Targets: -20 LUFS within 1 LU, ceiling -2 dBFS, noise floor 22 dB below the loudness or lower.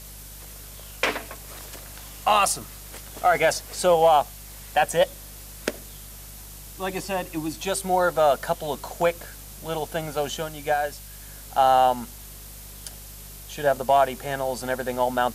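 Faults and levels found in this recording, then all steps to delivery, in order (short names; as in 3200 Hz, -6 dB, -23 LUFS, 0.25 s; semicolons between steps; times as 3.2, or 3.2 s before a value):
hum 50 Hz; harmonics up to 200 Hz; hum level -42 dBFS; noise floor -42 dBFS; noise floor target -46 dBFS; loudness -24.0 LUFS; peak -8.5 dBFS; loudness target -20.0 LUFS
-> de-hum 50 Hz, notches 4; noise print and reduce 6 dB; gain +4 dB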